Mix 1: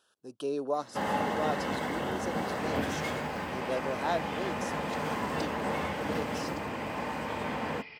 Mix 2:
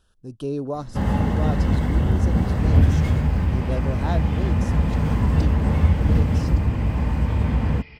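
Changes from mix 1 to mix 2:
first sound: send -8.5 dB; master: remove HPF 440 Hz 12 dB/oct

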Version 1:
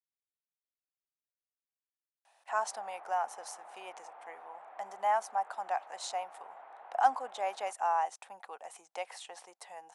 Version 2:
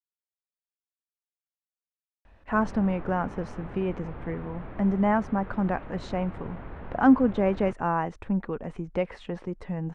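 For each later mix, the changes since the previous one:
speech: add LPF 1700 Hz 12 dB/oct; master: remove ladder high-pass 700 Hz, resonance 70%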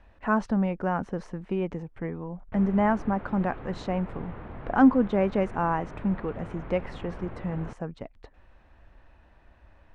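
speech: entry -2.25 s

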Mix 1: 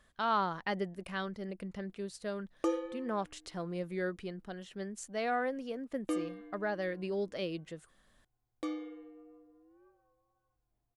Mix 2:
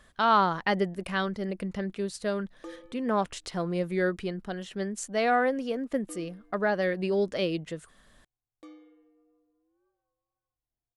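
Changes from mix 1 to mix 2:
speech +8.5 dB; background -11.5 dB

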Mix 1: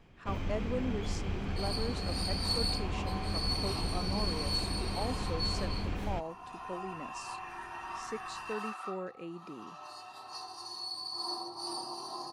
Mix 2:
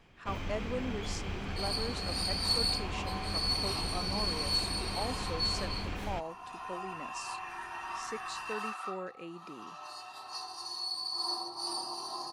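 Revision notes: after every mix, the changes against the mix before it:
master: add tilt shelf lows -3.5 dB, about 650 Hz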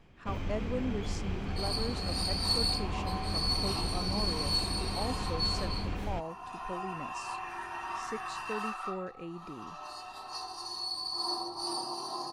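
speech: remove HPF 180 Hz; second sound +3.5 dB; master: add tilt shelf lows +3.5 dB, about 650 Hz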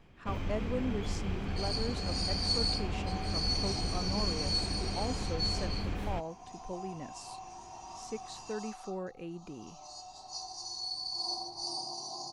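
second sound: add EQ curve 130 Hz 0 dB, 460 Hz -11 dB, 730 Hz -1 dB, 1700 Hz -30 dB, 6500 Hz +10 dB, 13000 Hz -28 dB

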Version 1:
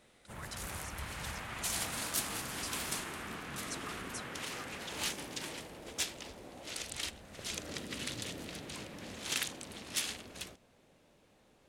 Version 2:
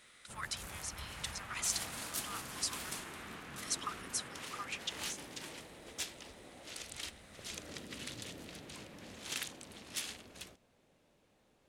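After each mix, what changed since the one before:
speech +8.0 dB; background -5.0 dB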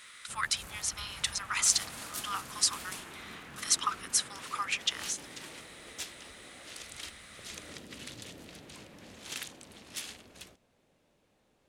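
speech +10.0 dB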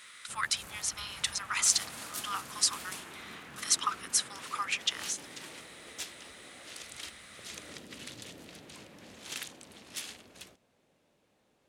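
master: add HPF 100 Hz 6 dB/oct

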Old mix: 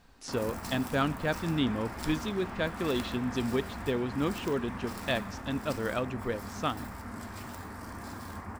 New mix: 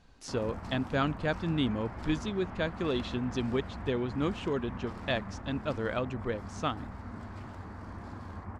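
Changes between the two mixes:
background: add tape spacing loss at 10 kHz 21 dB; reverb: off

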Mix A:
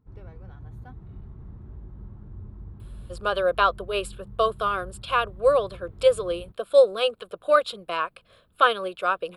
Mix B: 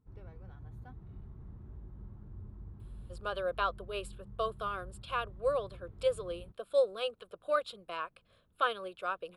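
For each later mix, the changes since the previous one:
speech -11.5 dB; background -6.5 dB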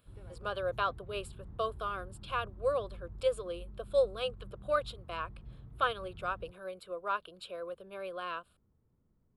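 speech: entry -2.80 s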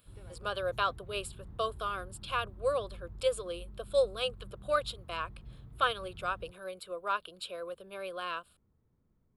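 master: add high shelf 2800 Hz +9 dB

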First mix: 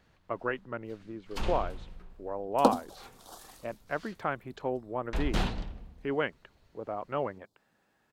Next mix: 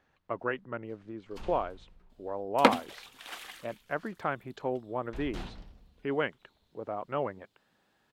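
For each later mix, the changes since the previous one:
first sound -11.5 dB; second sound: remove Butterworth band-stop 2200 Hz, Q 0.58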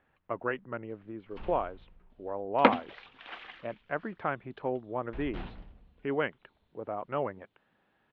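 master: add LPF 3100 Hz 24 dB/oct

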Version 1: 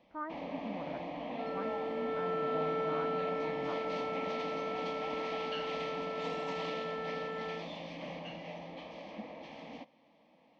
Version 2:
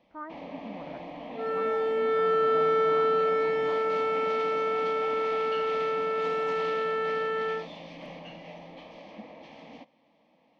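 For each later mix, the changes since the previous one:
second sound +11.0 dB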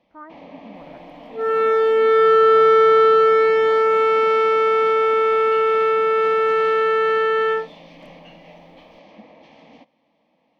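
second sound +11.0 dB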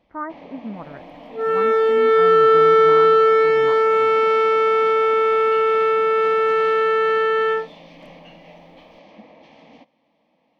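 speech +11.0 dB

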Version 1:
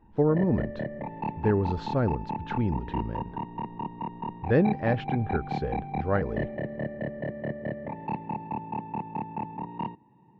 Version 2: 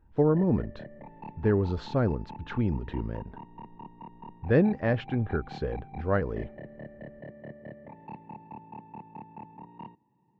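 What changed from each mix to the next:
background -11.0 dB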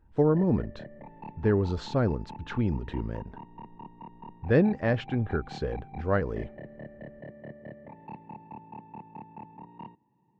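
speech: remove air absorption 110 m

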